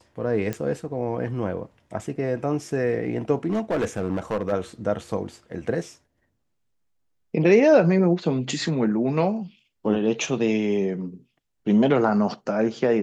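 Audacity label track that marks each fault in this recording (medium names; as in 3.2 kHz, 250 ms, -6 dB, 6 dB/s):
0.530000	0.530000	pop -15 dBFS
3.470000	4.520000	clipped -19.5 dBFS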